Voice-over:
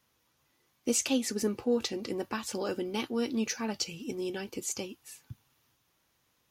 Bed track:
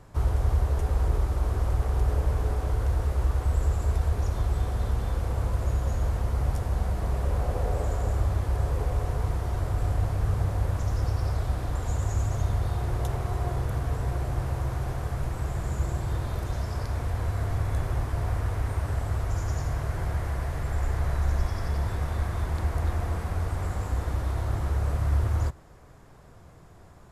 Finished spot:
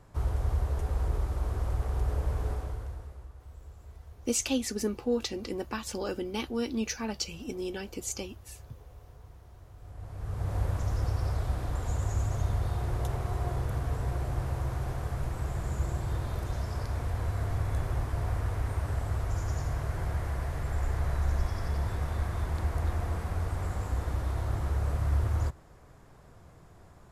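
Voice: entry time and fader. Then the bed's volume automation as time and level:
3.40 s, -0.5 dB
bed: 2.52 s -5 dB
3.33 s -23.5 dB
9.77 s -23.5 dB
10.56 s -3 dB

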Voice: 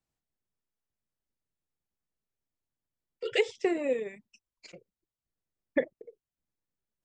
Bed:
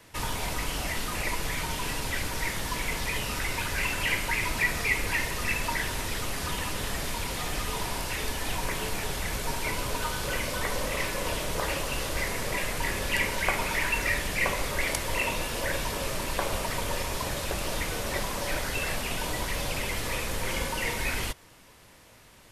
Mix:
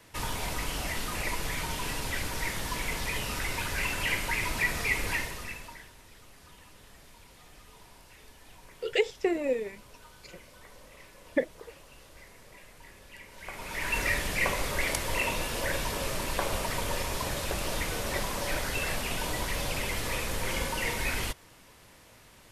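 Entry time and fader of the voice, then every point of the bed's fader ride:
5.60 s, +0.5 dB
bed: 5.13 s -2 dB
5.94 s -22 dB
13.26 s -22 dB
13.97 s -1 dB

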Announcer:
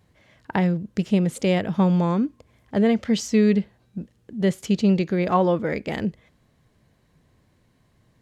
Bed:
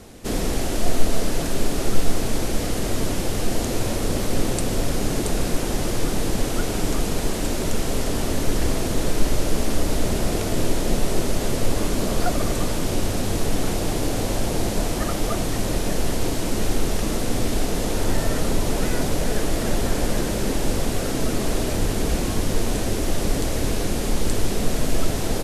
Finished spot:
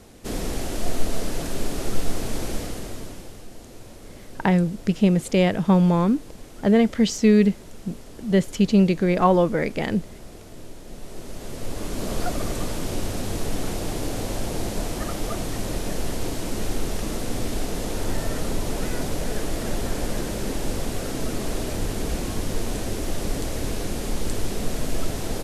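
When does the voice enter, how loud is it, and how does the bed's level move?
3.90 s, +2.0 dB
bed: 2.53 s -4.5 dB
3.48 s -19.5 dB
10.84 s -19.5 dB
12.12 s -4.5 dB

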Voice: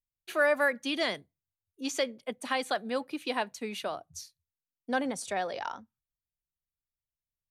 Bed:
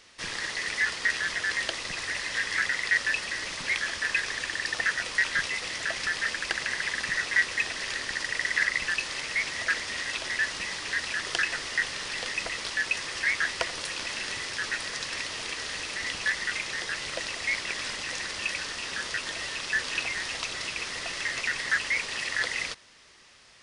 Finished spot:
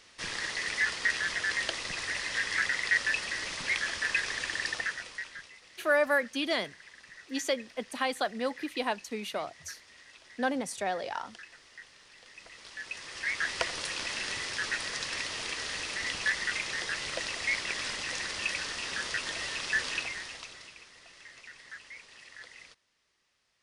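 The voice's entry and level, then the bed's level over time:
5.50 s, 0.0 dB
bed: 4.66 s -2 dB
5.56 s -22 dB
12.21 s -22 dB
13.59 s -1.5 dB
19.87 s -1.5 dB
20.90 s -20 dB

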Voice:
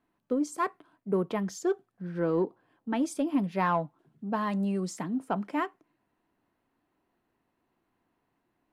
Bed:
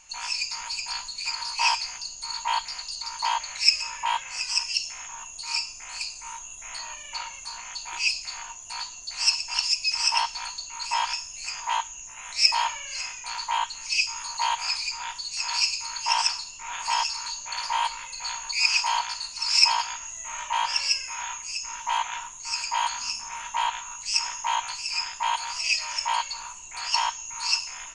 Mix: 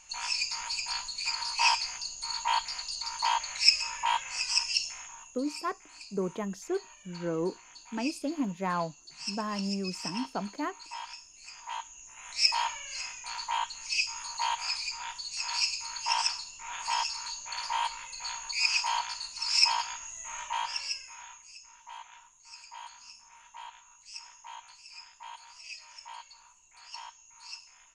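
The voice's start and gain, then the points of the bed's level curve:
5.05 s, -4.0 dB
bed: 4.84 s -2 dB
5.49 s -15 dB
11.38 s -15 dB
12.42 s -5 dB
20.40 s -5 dB
21.74 s -19.5 dB

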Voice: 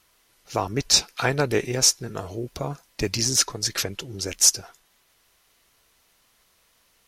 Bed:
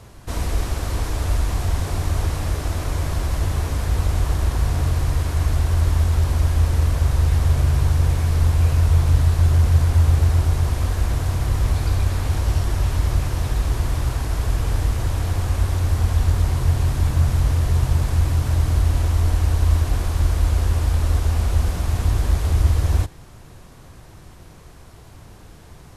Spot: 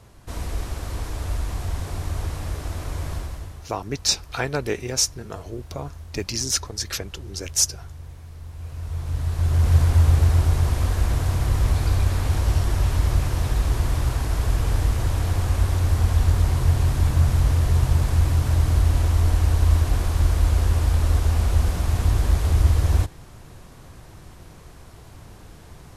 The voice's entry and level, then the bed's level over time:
3.15 s, -3.0 dB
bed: 3.15 s -6 dB
3.71 s -21.5 dB
8.45 s -21.5 dB
9.74 s -0.5 dB

